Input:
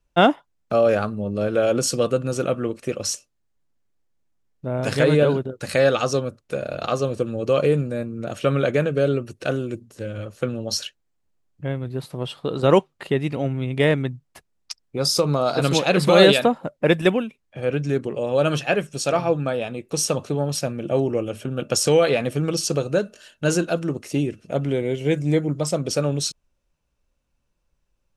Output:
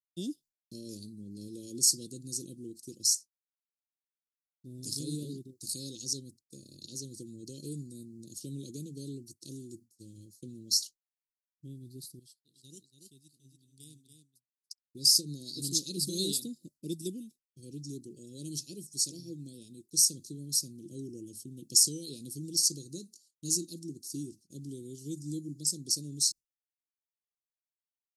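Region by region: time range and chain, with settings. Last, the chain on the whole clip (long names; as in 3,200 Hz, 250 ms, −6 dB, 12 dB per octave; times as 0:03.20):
0:12.19–0:14.83: guitar amp tone stack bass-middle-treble 5-5-5 + single-tap delay 284 ms −5 dB
whole clip: downward expander −34 dBFS; Chebyshev band-stop filter 340–4,500 Hz, order 4; spectral tilt +3.5 dB per octave; level −8.5 dB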